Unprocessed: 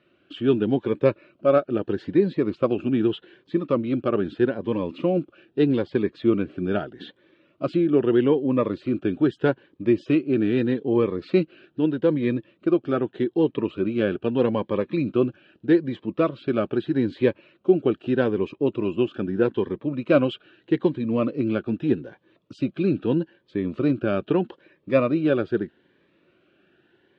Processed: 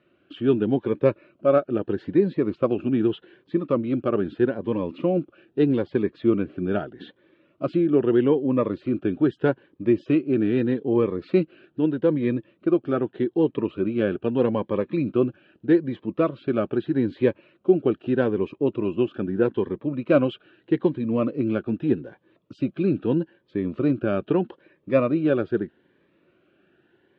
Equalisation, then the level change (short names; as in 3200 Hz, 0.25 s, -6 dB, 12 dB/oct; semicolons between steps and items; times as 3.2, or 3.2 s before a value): LPF 2400 Hz 6 dB/oct; 0.0 dB